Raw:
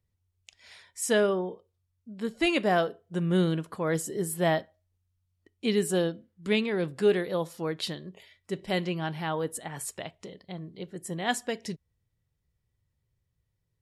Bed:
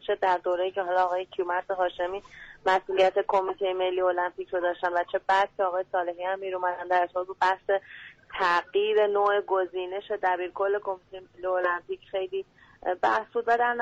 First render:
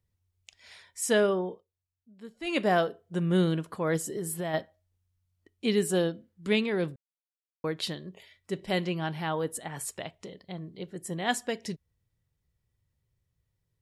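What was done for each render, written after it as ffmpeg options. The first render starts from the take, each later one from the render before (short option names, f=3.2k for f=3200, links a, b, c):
-filter_complex "[0:a]asplit=3[a][b][c];[a]afade=t=out:st=3.97:d=0.02[d];[b]acompressor=threshold=-29dB:ratio=6:attack=3.2:release=140:knee=1:detection=peak,afade=t=in:st=3.97:d=0.02,afade=t=out:st=4.53:d=0.02[e];[c]afade=t=in:st=4.53:d=0.02[f];[d][e][f]amix=inputs=3:normalize=0,asplit=5[g][h][i][j][k];[g]atrim=end=1.65,asetpts=PTS-STARTPTS,afade=t=out:st=1.5:d=0.15:silence=0.223872[l];[h]atrim=start=1.65:end=2.44,asetpts=PTS-STARTPTS,volume=-13dB[m];[i]atrim=start=2.44:end=6.96,asetpts=PTS-STARTPTS,afade=t=in:d=0.15:silence=0.223872,afade=t=out:st=4.516:d=0.004:c=hsin[n];[j]atrim=start=6.96:end=7.64,asetpts=PTS-STARTPTS,volume=0[o];[k]atrim=start=7.64,asetpts=PTS-STARTPTS,afade=t=in:d=0.004:c=hsin[p];[l][m][n][o][p]concat=n=5:v=0:a=1"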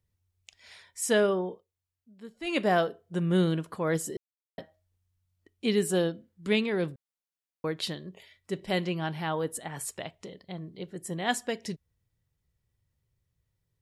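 -filter_complex "[0:a]asplit=3[a][b][c];[a]atrim=end=4.17,asetpts=PTS-STARTPTS,afade=t=out:st=4.166:d=0.004:c=hsin[d];[b]atrim=start=4.17:end=4.58,asetpts=PTS-STARTPTS,volume=0[e];[c]atrim=start=4.58,asetpts=PTS-STARTPTS,afade=t=in:d=0.004:c=hsin[f];[d][e][f]concat=n=3:v=0:a=1"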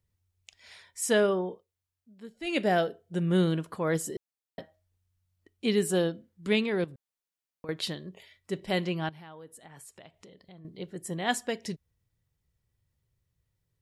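-filter_complex "[0:a]asettb=1/sr,asplit=3[a][b][c];[a]atrim=end=2.254[d];[b]atrim=start=2.25:end=3.28,asetpts=PTS-STARTPTS,afade=t=in:d=0.004:c=qsin,afade=t=out:st=1.026:d=0.004:c=qsin,equalizer=f=1.1k:w=3.8:g=-10[e];[c]atrim=start=3.276[f];[d][e]acrossfade=d=0.004:c1=hsin:c2=qsin[g];[g][f]acrossfade=d=0.004:c1=qsin:c2=hsin,asettb=1/sr,asplit=3[h][i][j];[h]atrim=end=6.844[k];[i]atrim=start=6.84:end=7.69,asetpts=PTS-STARTPTS,afade=t=in:d=0.004:c=qsin,afade=t=out:st=0.846:d=0.004:c=qsin,acompressor=threshold=-40dB:ratio=10:attack=3.2:release=140:knee=1:detection=peak[l];[j]atrim=start=7.686[m];[k][l]acrossfade=d=0.004:c1=hsin:c2=qsin[n];[n][m]acrossfade=d=0.004:c1=qsin:c2=hsin,asettb=1/sr,asplit=3[o][p][q];[o]atrim=end=9.094[r];[p]atrim=start=9.09:end=10.65,asetpts=PTS-STARTPTS,afade=t=in:d=0.004:c=qsin,afade=t=out:st=1.556:d=0.004:c=qsin,acompressor=threshold=-53dB:ratio=2.5:attack=3.2:release=140:knee=1:detection=peak[s];[q]atrim=start=10.646[t];[r][s]acrossfade=d=0.004:c1=hsin:c2=qsin[u];[u][t]acrossfade=d=0.004:c1=qsin:c2=hsin"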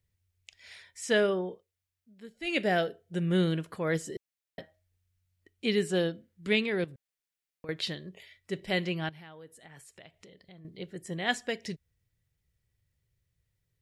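-filter_complex "[0:a]acrossover=split=6800[a][b];[b]acompressor=threshold=-55dB:ratio=4:attack=1:release=60[c];[a][c]amix=inputs=2:normalize=0,equalizer=f=250:t=o:w=1:g=-3,equalizer=f=1k:t=o:w=1:g=-6,equalizer=f=2k:t=o:w=1:g=4"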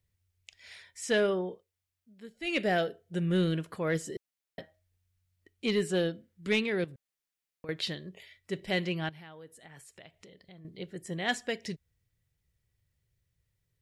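-af "asoftclip=type=tanh:threshold=-17dB"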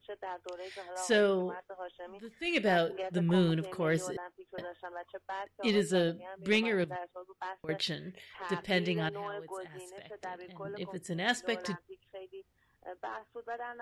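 -filter_complex "[1:a]volume=-17dB[a];[0:a][a]amix=inputs=2:normalize=0"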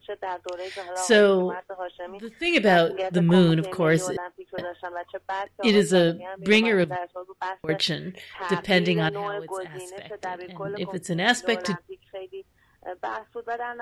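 -af "volume=9.5dB"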